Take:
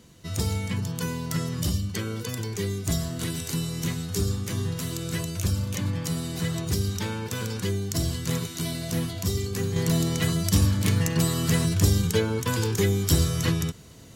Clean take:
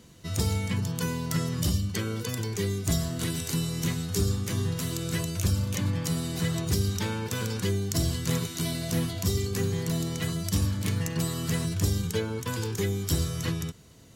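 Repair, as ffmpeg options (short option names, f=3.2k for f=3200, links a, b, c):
-af "asetnsamples=n=441:p=0,asendcmd='9.76 volume volume -5.5dB',volume=0dB"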